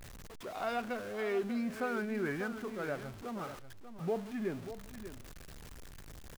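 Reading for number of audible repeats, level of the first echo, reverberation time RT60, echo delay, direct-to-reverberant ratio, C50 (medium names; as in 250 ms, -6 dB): 1, -11.5 dB, no reverb, 589 ms, no reverb, no reverb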